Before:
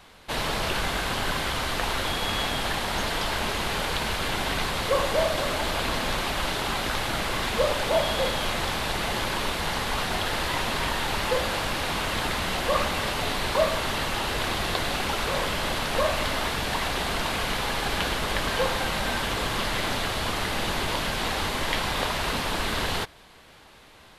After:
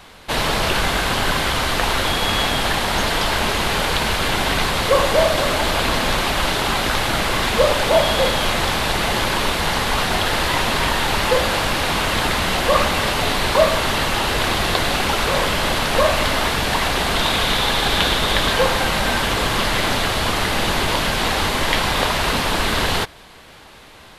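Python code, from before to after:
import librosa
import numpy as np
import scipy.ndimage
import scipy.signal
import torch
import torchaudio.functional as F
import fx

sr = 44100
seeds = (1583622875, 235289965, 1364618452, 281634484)

y = fx.peak_eq(x, sr, hz=3600.0, db=8.0, octaves=0.25, at=(17.15, 18.53))
y = y * librosa.db_to_amplitude(8.0)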